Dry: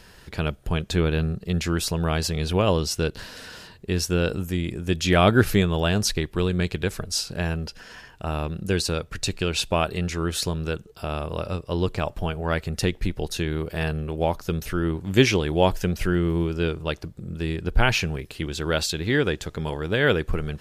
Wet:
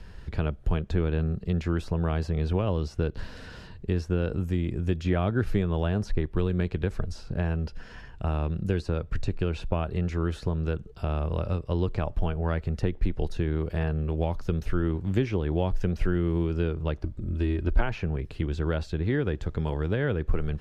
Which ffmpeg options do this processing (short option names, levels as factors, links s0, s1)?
-filter_complex "[0:a]asettb=1/sr,asplit=3[s0][s1][s2];[s0]atrim=end=17.034[s3];[s1]atrim=start=17.03:end=17.81,asetpts=PTS-STARTPTS,afade=t=in:d=0.004:c=qsin,afade=t=out:st=0.776:d=0.004:c=qsin,aecho=1:1:3.2:0.65,atrim=end_sample=34398[s4];[s2]atrim=start=17.806[s5];[s3][s4]acrossfade=d=0.004:c1=hsin:c2=qsin[s6];[s6][s5]acrossfade=d=0.004:c1=qsin:c2=hsin,acrossover=split=240|1800[s7][s8][s9];[s7]acompressor=threshold=0.0224:ratio=4[s10];[s8]acompressor=threshold=0.0562:ratio=4[s11];[s9]acompressor=threshold=0.01:ratio=4[s12];[s10][s11][s12]amix=inputs=3:normalize=0,aemphasis=mode=reproduction:type=bsi,volume=0.668"